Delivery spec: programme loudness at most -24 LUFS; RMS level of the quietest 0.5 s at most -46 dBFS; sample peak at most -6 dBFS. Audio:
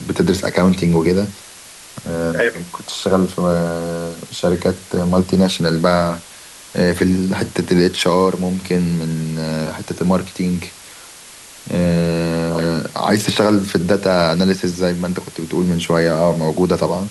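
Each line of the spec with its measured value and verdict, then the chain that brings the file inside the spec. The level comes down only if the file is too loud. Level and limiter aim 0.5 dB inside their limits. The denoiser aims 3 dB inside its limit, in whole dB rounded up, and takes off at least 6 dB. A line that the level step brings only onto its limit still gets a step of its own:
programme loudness -17.5 LUFS: fail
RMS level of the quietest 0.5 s -39 dBFS: fail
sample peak -3.0 dBFS: fail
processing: noise reduction 6 dB, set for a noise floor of -39 dBFS; trim -7 dB

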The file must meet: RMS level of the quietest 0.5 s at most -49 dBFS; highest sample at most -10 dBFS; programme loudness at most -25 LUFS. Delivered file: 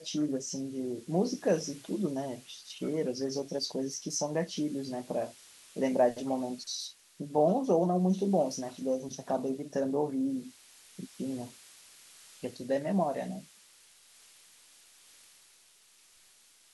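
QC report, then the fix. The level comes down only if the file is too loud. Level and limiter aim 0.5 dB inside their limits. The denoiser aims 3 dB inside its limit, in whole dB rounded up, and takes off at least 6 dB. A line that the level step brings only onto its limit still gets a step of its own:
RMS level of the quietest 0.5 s -62 dBFS: pass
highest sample -14.0 dBFS: pass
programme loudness -32.5 LUFS: pass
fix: none needed

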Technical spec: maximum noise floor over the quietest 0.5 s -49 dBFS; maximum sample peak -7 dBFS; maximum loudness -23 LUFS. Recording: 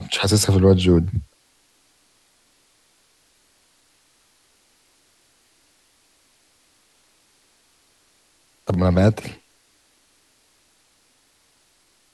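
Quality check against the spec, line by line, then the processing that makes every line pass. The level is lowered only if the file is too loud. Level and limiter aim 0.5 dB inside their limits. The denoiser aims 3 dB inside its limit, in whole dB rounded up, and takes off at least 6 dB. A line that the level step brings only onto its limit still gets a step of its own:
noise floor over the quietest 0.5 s -61 dBFS: pass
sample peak -5.0 dBFS: fail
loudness -18.5 LUFS: fail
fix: trim -5 dB

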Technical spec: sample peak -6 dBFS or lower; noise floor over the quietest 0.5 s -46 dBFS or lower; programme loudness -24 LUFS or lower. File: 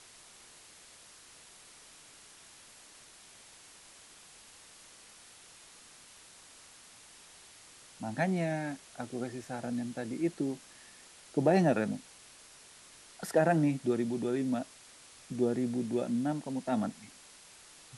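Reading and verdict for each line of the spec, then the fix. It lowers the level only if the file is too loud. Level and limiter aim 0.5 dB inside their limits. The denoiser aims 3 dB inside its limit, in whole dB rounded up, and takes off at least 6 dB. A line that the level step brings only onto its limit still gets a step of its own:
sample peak -13.5 dBFS: pass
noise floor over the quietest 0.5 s -56 dBFS: pass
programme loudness -32.5 LUFS: pass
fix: none needed

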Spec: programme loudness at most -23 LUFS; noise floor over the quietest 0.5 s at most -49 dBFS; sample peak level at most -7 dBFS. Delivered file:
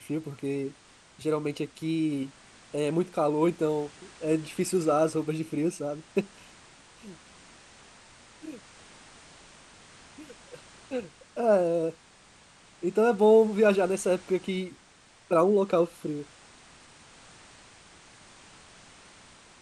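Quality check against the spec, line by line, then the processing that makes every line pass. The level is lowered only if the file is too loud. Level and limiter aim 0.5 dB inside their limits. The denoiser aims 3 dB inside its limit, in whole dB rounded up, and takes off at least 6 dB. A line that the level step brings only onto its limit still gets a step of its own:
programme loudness -27.5 LUFS: pass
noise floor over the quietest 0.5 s -57 dBFS: pass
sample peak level -10.0 dBFS: pass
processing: none needed

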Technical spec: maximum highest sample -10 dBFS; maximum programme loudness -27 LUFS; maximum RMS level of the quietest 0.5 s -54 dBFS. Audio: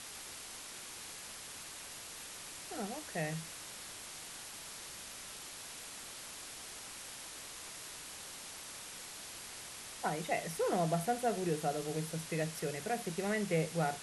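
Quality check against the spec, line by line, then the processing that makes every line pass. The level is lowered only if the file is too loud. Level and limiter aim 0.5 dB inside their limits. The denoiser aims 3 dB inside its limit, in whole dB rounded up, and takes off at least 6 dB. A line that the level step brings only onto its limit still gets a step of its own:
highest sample -21.0 dBFS: pass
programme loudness -39.5 LUFS: pass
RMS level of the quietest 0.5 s -48 dBFS: fail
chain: noise reduction 9 dB, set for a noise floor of -48 dBFS

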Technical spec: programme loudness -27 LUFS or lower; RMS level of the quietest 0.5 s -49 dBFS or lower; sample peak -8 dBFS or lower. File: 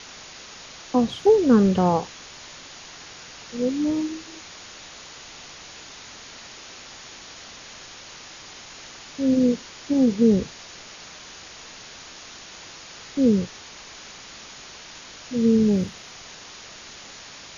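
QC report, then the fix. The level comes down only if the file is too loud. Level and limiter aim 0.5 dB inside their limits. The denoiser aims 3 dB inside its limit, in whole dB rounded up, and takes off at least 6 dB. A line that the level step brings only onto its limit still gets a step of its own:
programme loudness -21.5 LUFS: fail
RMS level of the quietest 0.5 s -42 dBFS: fail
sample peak -6.5 dBFS: fail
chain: noise reduction 6 dB, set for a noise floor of -42 dBFS; trim -6 dB

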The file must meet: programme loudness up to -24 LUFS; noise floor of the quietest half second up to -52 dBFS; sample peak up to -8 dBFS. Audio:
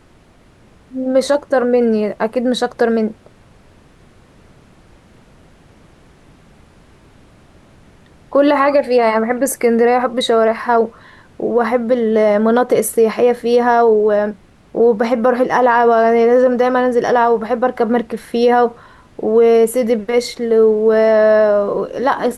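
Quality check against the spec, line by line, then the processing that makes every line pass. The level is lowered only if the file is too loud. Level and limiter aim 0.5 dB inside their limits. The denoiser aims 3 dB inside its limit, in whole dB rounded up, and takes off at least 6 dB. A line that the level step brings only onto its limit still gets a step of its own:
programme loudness -14.5 LUFS: fail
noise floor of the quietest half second -48 dBFS: fail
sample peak -3.5 dBFS: fail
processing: trim -10 dB

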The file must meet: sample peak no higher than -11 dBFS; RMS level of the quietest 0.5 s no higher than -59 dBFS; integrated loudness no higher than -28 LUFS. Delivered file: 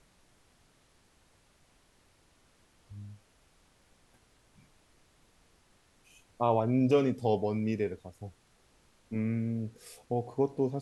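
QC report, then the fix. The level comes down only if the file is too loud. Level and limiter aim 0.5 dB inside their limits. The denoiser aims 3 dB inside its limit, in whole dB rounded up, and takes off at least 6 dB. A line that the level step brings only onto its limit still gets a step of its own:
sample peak -13.5 dBFS: pass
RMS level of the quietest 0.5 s -66 dBFS: pass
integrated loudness -31.0 LUFS: pass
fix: none needed

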